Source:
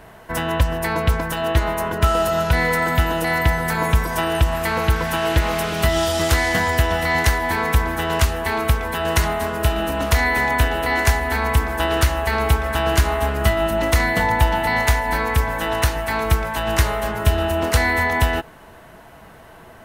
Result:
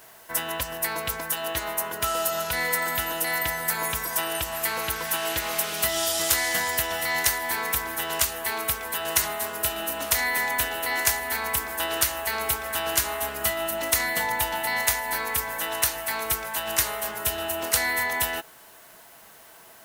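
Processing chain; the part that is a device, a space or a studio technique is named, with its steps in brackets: turntable without a phono preamp (RIAA curve recording; white noise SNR 28 dB); gain -8 dB

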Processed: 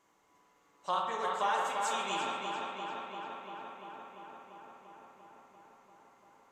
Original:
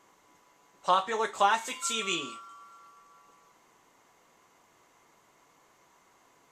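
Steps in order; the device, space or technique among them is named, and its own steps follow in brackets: dub delay into a spring reverb (darkening echo 0.344 s, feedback 78%, low-pass 4200 Hz, level -4 dB; spring tank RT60 1.4 s, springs 52 ms, chirp 75 ms, DRR 1 dB); gain -9 dB

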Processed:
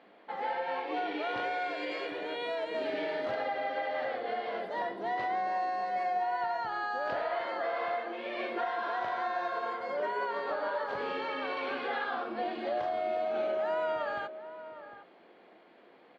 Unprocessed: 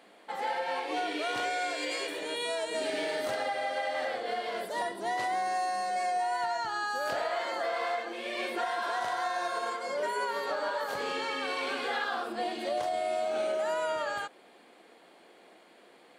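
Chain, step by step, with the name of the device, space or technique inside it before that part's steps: shout across a valley (air absorption 300 m; outdoor echo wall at 130 m, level -12 dB)

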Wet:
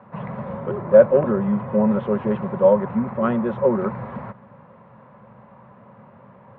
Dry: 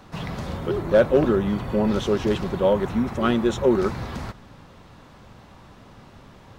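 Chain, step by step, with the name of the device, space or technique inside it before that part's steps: bass cabinet (speaker cabinet 84–2100 Hz, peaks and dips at 85 Hz -8 dB, 130 Hz +5 dB, 210 Hz +8 dB, 310 Hz -9 dB, 550 Hz +10 dB, 1000 Hz +8 dB); gain -3 dB

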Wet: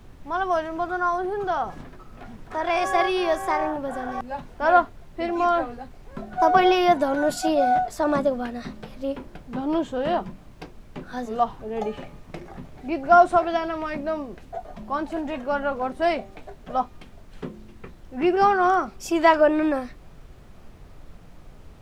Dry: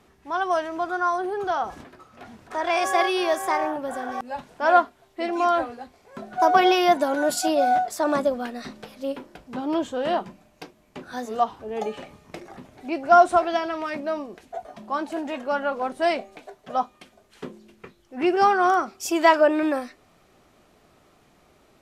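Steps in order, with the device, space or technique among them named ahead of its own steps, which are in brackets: car interior (bell 150 Hz +8 dB 0.9 oct; high shelf 4800 Hz -8 dB; brown noise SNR 19 dB)

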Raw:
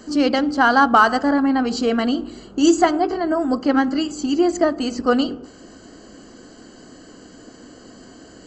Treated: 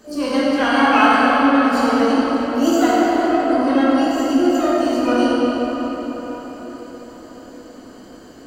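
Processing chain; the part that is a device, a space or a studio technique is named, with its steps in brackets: shimmer-style reverb (harmoniser +12 st -9 dB; reverb RT60 5.3 s, pre-delay 11 ms, DRR -8 dB); gain -8 dB

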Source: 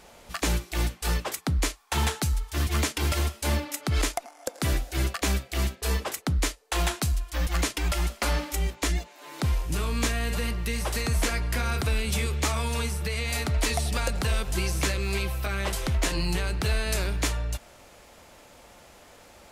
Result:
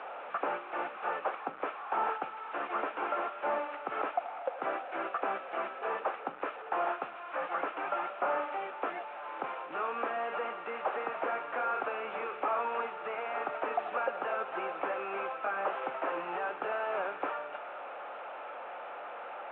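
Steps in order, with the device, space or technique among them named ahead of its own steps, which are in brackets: digital answering machine (BPF 320–3400 Hz; delta modulation 16 kbps, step -39 dBFS; speaker cabinet 470–3500 Hz, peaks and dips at 540 Hz +4 dB, 780 Hz +7 dB, 1300 Hz +8 dB, 2000 Hz -7 dB, 3100 Hz -6 dB)

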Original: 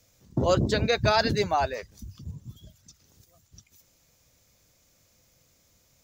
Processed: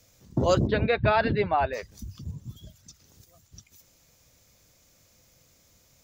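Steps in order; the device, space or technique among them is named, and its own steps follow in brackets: parallel compression (in parallel at -8 dB: compressor, threshold -38 dBFS, peak gain reduction 18.5 dB); 0.67–1.73 on the sum: inverse Chebyshev low-pass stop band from 6200 Hz, stop band 40 dB

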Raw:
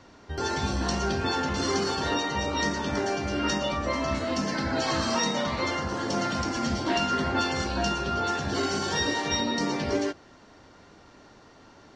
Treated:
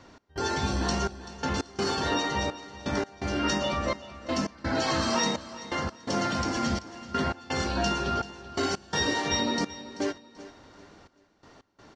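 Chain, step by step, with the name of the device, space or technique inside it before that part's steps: trance gate with a delay (step gate "x.xxxx.." 84 bpm -24 dB; feedback echo 0.385 s, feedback 33%, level -16 dB)

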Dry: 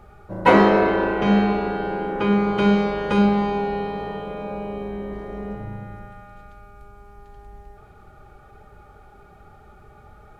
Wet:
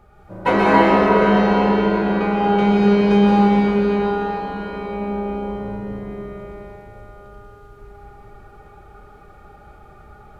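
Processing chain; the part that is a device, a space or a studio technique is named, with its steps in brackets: cathedral (reverb RT60 5.1 s, pre-delay 0.118 s, DRR -7 dB); gain -4 dB

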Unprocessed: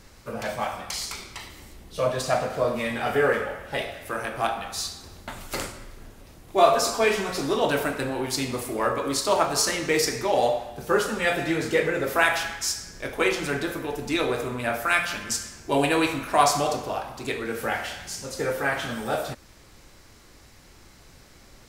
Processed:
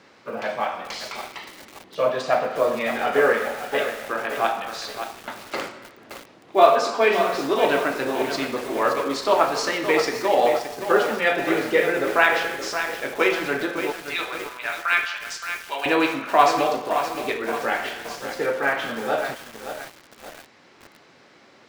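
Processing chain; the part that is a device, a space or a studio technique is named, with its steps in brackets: early digital voice recorder (BPF 260–3500 Hz; block floating point 7-bit); HPF 69 Hz 12 dB/oct; 13.92–15.86 HPF 1200 Hz 12 dB/oct; lo-fi delay 0.571 s, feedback 55%, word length 6-bit, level -8 dB; gain +3.5 dB

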